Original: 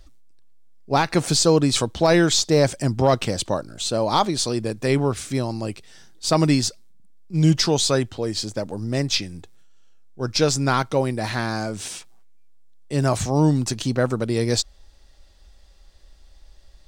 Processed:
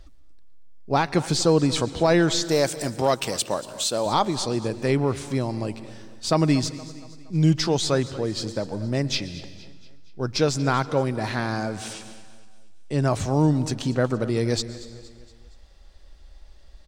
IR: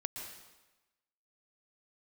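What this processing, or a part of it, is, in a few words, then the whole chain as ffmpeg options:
ducked reverb: -filter_complex "[0:a]asettb=1/sr,asplit=3[link_01][link_02][link_03];[link_01]atrim=end=2.444[link_04];[link_02]atrim=start=2.44:end=4.06,asetpts=PTS-STARTPTS,afade=type=in:duration=0.004:curve=qsin,afade=type=out:start_time=1.616:duration=0.004:curve=qsin,aemphasis=mode=production:type=bsi[link_05];[link_03]atrim=start=4.056[link_06];[link_04][link_05]acrossfade=duration=0.004:curve1=hsin:curve2=qsin[link_07];[link_07][link_06]acrossfade=duration=0.004:curve1=qsin:curve2=hsin,asettb=1/sr,asplit=3[link_08][link_09][link_10];[link_08]atrim=end=11.934[link_11];[link_09]atrim=start=11.93:end=13.1,asetpts=PTS-STARTPTS,afade=type=in:duration=0.004:curve=qsin,afade=type=out:start_time=1.166:duration=0.004:curve=qsin,lowpass=9600[link_12];[link_10]atrim=start=13.096[link_13];[link_11][link_12]acrossfade=duration=0.004:curve1=hsin:curve2=qsin[link_14];[link_14][link_13]acrossfade=duration=0.004:curve1=qsin:curve2=hsin,highshelf=frequency=4800:gain=-7.5,asplit=3[link_15][link_16][link_17];[1:a]atrim=start_sample=2205[link_18];[link_16][link_18]afir=irnorm=-1:irlink=0[link_19];[link_17]apad=whole_len=744120[link_20];[link_19][link_20]sidechaincompress=threshold=-29dB:ratio=4:attack=7.2:release=568,volume=-1.5dB[link_21];[link_15][link_21]amix=inputs=2:normalize=0,aecho=1:1:234|468|702|936:0.126|0.0642|0.0327|0.0167,volume=-3dB"

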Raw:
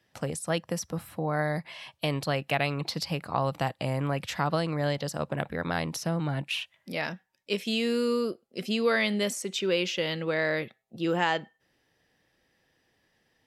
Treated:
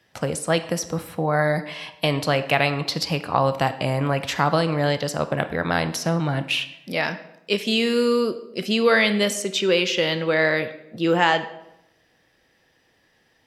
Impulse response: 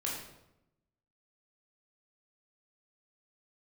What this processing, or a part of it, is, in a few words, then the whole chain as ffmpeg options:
filtered reverb send: -filter_complex "[0:a]asplit=2[link_01][link_02];[link_02]highpass=280,lowpass=7900[link_03];[1:a]atrim=start_sample=2205[link_04];[link_03][link_04]afir=irnorm=-1:irlink=0,volume=-10dB[link_05];[link_01][link_05]amix=inputs=2:normalize=0,volume=6dB"

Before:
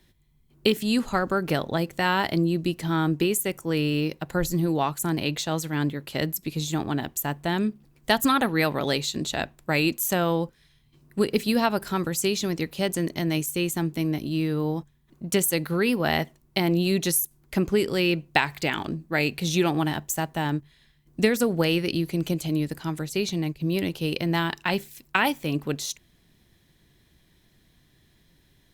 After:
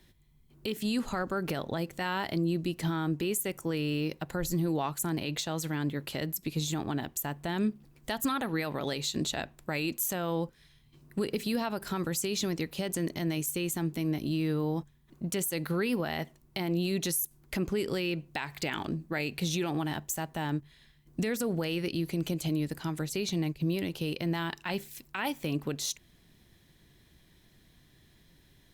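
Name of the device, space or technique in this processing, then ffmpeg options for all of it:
stacked limiters: -af "alimiter=limit=-10dB:level=0:latency=1:release=388,alimiter=limit=-14dB:level=0:latency=1,alimiter=limit=-21dB:level=0:latency=1:release=187"

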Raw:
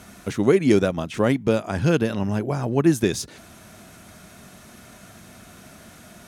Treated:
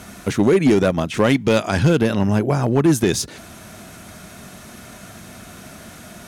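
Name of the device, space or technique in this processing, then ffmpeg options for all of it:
limiter into clipper: -filter_complex "[0:a]asettb=1/sr,asplit=3[link_01][link_02][link_03];[link_01]atrim=end=1.194[link_04];[link_02]atrim=start=1.19:end=1.83,asetpts=PTS-STARTPTS,afade=type=in:duration=0.004:curve=qsin,afade=type=out:start_time=0.636:duration=0.004:curve=qsin,equalizer=frequency=4000:width=0.48:gain=7.5[link_05];[link_03]atrim=start=1.826[link_06];[link_04][link_05]acrossfade=duration=0.004:curve1=hsin:curve2=qsin[link_07];[link_07][link_06]acrossfade=duration=0.004:curve1=qsin:curve2=hsin,alimiter=limit=-11.5dB:level=0:latency=1:release=28,asoftclip=type=hard:threshold=-15dB,volume=6.5dB"

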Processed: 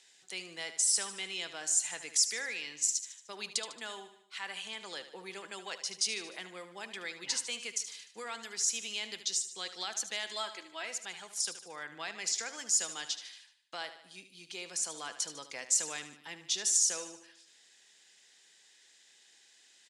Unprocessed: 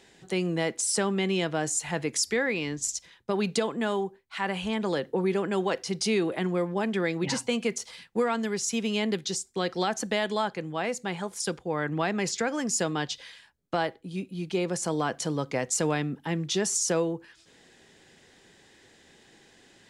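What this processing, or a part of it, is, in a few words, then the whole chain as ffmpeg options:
piezo pickup straight into a mixer: -filter_complex "[0:a]asettb=1/sr,asplit=3[link_01][link_02][link_03];[link_01]atrim=end=10.274[link_04];[link_02]atrim=start=10.27:end=10.85,asetpts=PTS-STARTPTS,afade=type=in:duration=0.004:curve=qsin,afade=type=out:start_time=0.576:duration=0.004:curve=qsin,aecho=1:1:3.1:0.89,atrim=end_sample=25578[link_05];[link_03]atrim=start=10.846[link_06];[link_04][link_05]acrossfade=duration=0.004:curve1=hsin:curve2=qsin[link_07];[link_07][link_06]acrossfade=duration=0.004:curve1=qsin:curve2=hsin,lowpass=7700,aderivative,aecho=1:1:75|150|225|300|375:0.251|0.131|0.0679|0.0353|0.0184,volume=3.5dB"

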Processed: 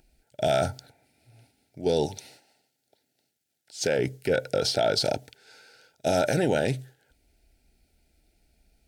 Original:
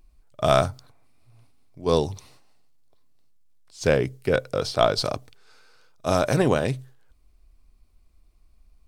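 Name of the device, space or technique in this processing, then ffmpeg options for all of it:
PA system with an anti-feedback notch: -filter_complex "[0:a]highpass=frequency=170:poles=1,asuperstop=centerf=1100:order=20:qfactor=2.6,alimiter=limit=-19.5dB:level=0:latency=1:release=57,asettb=1/sr,asplit=3[link_01][link_02][link_03];[link_01]atrim=end=2.064[link_04];[link_02]atrim=start=2.06:end=3.99,asetpts=PTS-STARTPTS,afade=type=in:duration=0.004:curve=qsin,afade=type=out:start_time=1.926:duration=0.004:curve=qsin,highpass=frequency=210:poles=1[link_05];[link_03]atrim=start=3.986[link_06];[link_04][link_05]acrossfade=duration=0.004:curve1=hsin:curve2=qsin[link_07];[link_07][link_06]acrossfade=duration=0.004:curve1=qsin:curve2=hsin,volume=5dB"

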